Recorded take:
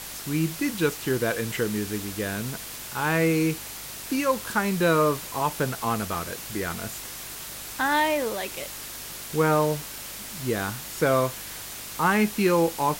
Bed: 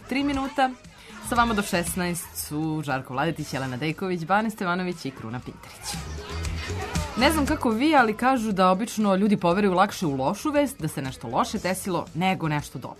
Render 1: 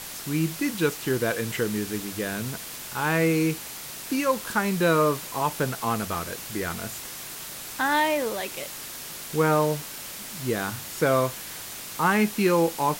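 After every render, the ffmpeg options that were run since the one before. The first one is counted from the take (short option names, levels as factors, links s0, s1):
-af "bandreject=f=50:t=h:w=4,bandreject=f=100:t=h:w=4"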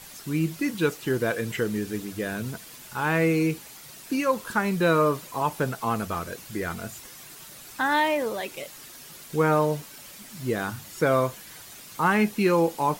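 -af "afftdn=nr=9:nf=-38"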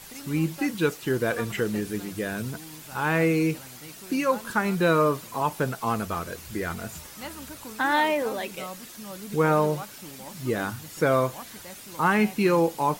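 -filter_complex "[1:a]volume=0.112[s0];[0:a][s0]amix=inputs=2:normalize=0"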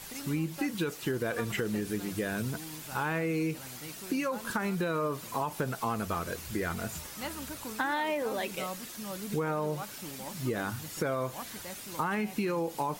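-af "alimiter=limit=0.158:level=0:latency=1,acompressor=threshold=0.0398:ratio=6"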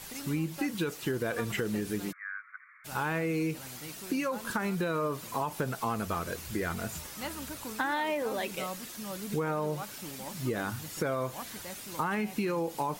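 -filter_complex "[0:a]asplit=3[s0][s1][s2];[s0]afade=t=out:st=2.11:d=0.02[s3];[s1]asuperpass=centerf=1600:order=20:qfactor=1.4,afade=t=in:st=2.11:d=0.02,afade=t=out:st=2.84:d=0.02[s4];[s2]afade=t=in:st=2.84:d=0.02[s5];[s3][s4][s5]amix=inputs=3:normalize=0"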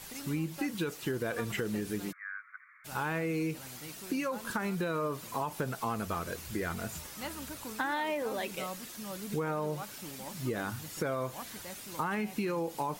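-af "volume=0.794"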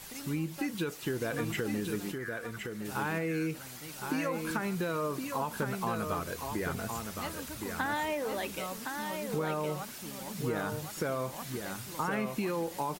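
-af "aecho=1:1:1065:0.531"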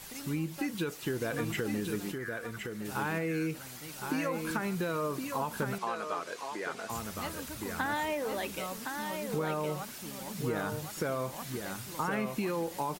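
-filter_complex "[0:a]asettb=1/sr,asplit=3[s0][s1][s2];[s0]atrim=end=5.784[s3];[s1]atrim=start=5.78:end=6.9,asetpts=PTS-STARTPTS,afade=t=in:d=0.004:c=qsin,afade=t=out:st=1.116:d=0.004:c=qsin,highpass=410,lowpass=6900[s4];[s2]atrim=start=6.896[s5];[s3][s4]acrossfade=d=0.004:c1=hsin:c2=qsin[s6];[s6][s5]acrossfade=d=0.004:c1=qsin:c2=hsin"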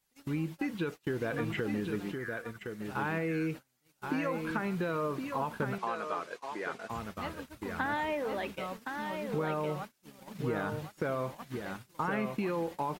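-filter_complex "[0:a]agate=range=0.0251:threshold=0.0112:ratio=16:detection=peak,acrossover=split=3600[s0][s1];[s1]acompressor=threshold=0.001:ratio=4:attack=1:release=60[s2];[s0][s2]amix=inputs=2:normalize=0"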